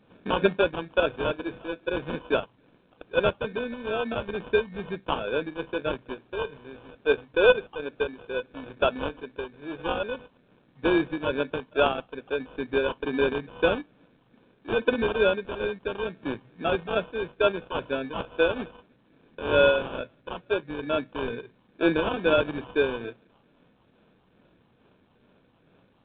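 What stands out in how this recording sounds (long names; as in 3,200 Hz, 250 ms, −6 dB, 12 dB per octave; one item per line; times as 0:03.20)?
a buzz of ramps at a fixed pitch in blocks of 8 samples
phaser sweep stages 6, 2.3 Hz, lowest notch 570–2,300 Hz
aliases and images of a low sample rate 2,000 Hz, jitter 0%
A-law companding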